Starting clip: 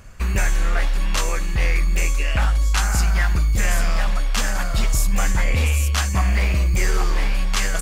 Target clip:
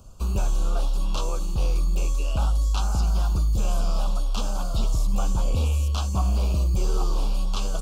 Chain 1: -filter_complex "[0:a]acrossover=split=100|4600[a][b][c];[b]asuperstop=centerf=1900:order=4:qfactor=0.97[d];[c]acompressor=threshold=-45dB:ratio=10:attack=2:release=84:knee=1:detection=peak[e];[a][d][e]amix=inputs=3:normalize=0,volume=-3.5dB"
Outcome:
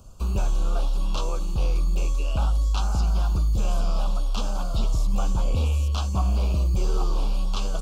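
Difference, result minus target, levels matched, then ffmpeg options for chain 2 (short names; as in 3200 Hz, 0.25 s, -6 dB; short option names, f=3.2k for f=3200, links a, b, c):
compressor: peak gain reduction +5.5 dB
-filter_complex "[0:a]acrossover=split=100|4600[a][b][c];[b]asuperstop=centerf=1900:order=4:qfactor=0.97[d];[c]acompressor=threshold=-39dB:ratio=10:attack=2:release=84:knee=1:detection=peak[e];[a][d][e]amix=inputs=3:normalize=0,volume=-3.5dB"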